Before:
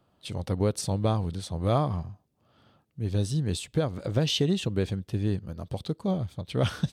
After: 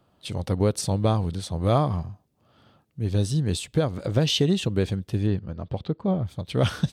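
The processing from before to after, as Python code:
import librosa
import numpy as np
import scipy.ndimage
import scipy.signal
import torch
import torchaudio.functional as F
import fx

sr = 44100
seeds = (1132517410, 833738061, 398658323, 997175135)

y = fx.lowpass(x, sr, hz=fx.line((5.26, 4100.0), (6.25, 2100.0)), slope=12, at=(5.26, 6.25), fade=0.02)
y = y * 10.0 ** (3.5 / 20.0)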